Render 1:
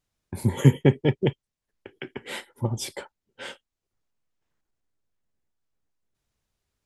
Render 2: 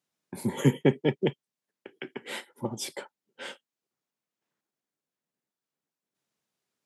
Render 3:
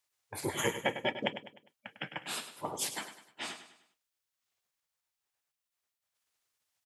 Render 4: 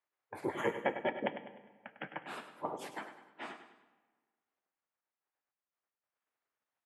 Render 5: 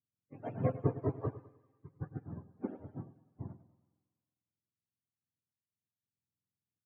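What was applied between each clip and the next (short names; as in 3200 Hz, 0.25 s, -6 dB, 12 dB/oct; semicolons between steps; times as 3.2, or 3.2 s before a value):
HPF 160 Hz 24 dB/oct; gain -2 dB
spectral gate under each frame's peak -10 dB weak; compressor 2.5:1, threshold -34 dBFS, peak gain reduction 5.5 dB; on a send: feedback echo 0.101 s, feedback 42%, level -11 dB; on the sum: gain +5.5 dB
three-band isolator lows -14 dB, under 170 Hz, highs -21 dB, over 2100 Hz; on a send at -15 dB: reverb RT60 1.6 s, pre-delay 30 ms
spectrum mirrored in octaves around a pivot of 490 Hz; thin delay 0.172 s, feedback 70%, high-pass 4600 Hz, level -5.5 dB; upward expander 1.5:1, over -54 dBFS; gain +3.5 dB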